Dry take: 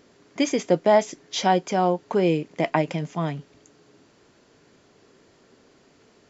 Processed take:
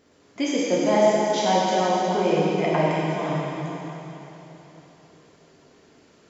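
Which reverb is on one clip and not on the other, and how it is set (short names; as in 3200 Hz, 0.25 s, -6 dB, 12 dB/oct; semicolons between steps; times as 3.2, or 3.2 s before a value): plate-style reverb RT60 3.6 s, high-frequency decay 1×, DRR -7 dB; gain -6 dB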